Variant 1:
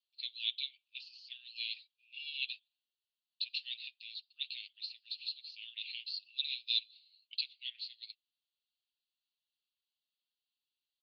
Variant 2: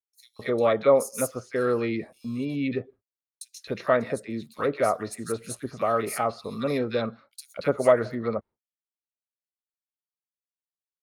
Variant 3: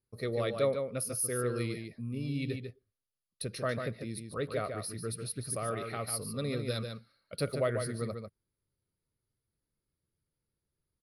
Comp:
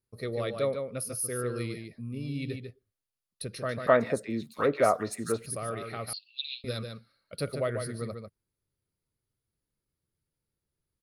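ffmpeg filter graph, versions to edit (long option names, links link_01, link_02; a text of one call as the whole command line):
ffmpeg -i take0.wav -i take1.wav -i take2.wav -filter_complex "[2:a]asplit=3[link_01][link_02][link_03];[link_01]atrim=end=3.872[link_04];[1:a]atrim=start=3.868:end=5.462[link_05];[link_02]atrim=start=5.458:end=6.132[link_06];[0:a]atrim=start=6.128:end=6.642[link_07];[link_03]atrim=start=6.638[link_08];[link_04][link_05]acrossfade=duration=0.004:curve1=hsin:curve2=hsin[link_09];[link_09][link_06]acrossfade=duration=0.004:curve1=hsin:curve2=hsin[link_10];[link_10][link_07]acrossfade=duration=0.004:curve1=hsin:curve2=hsin[link_11];[link_11][link_08]acrossfade=duration=0.004:curve1=hsin:curve2=hsin" out.wav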